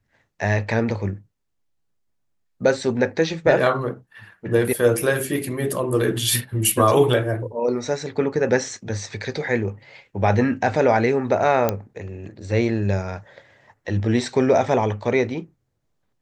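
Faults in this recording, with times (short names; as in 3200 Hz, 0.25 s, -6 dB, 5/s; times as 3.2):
11.69 pop -6 dBFS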